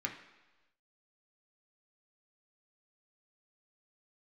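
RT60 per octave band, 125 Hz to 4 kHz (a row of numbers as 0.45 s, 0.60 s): 1.0 s, 1.0 s, 1.1 s, 1.1 s, 1.1 s, 1.2 s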